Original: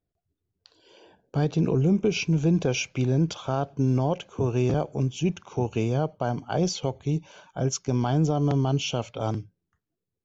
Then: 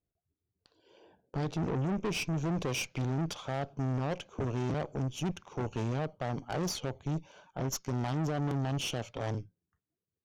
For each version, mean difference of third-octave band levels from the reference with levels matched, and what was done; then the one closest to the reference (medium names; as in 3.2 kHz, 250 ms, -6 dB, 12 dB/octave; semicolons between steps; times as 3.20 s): 5.0 dB: valve stage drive 29 dB, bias 0.8; tape noise reduction on one side only decoder only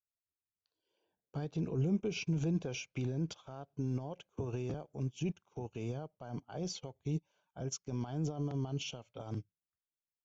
3.5 dB: peak limiter -23.5 dBFS, peak gain reduction 11 dB; upward expansion 2.5:1, over -46 dBFS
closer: second